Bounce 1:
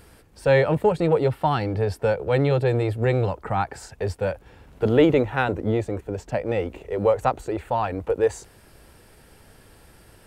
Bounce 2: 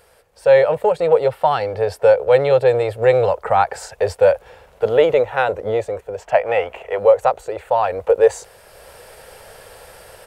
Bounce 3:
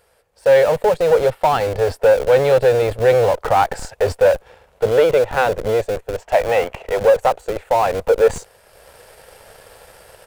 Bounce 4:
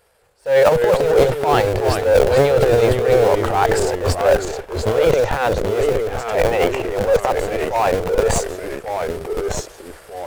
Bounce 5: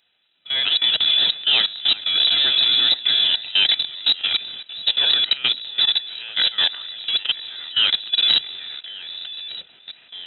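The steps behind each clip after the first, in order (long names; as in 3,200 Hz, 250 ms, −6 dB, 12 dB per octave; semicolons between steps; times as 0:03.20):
gain on a spectral selection 0:06.22–0:06.99, 620–3,400 Hz +9 dB; low shelf with overshoot 390 Hz −9.5 dB, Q 3; automatic gain control gain up to 12 dB; level −1 dB
leveller curve on the samples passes 1; in parallel at −10 dB: comparator with hysteresis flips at −20 dBFS; on the sum: level −3.5 dB
transient designer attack −11 dB, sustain +11 dB; delay with pitch and tempo change per echo 190 ms, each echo −2 semitones, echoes 2, each echo −6 dB; level −1 dB
voice inversion scrambler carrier 3,900 Hz; output level in coarse steps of 17 dB; notch comb filter 1,100 Hz; level +2.5 dB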